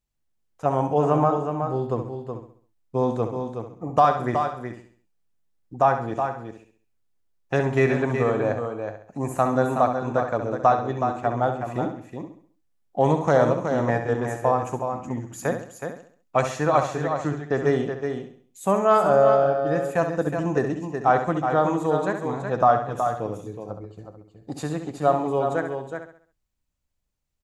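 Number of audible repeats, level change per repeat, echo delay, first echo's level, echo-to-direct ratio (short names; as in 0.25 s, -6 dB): 8, no steady repeat, 67 ms, -8.5 dB, -4.0 dB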